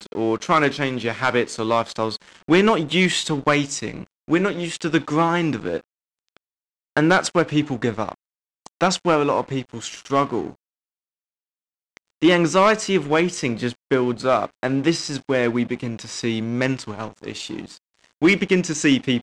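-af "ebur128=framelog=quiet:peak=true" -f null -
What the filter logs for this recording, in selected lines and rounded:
Integrated loudness:
  I:         -21.0 LUFS
  Threshold: -31.7 LUFS
Loudness range:
  LRA:         4.0 LU
  Threshold: -42.2 LUFS
  LRA low:   -24.3 LUFS
  LRA high:  -20.3 LUFS
True peak:
  Peak:       -7.6 dBFS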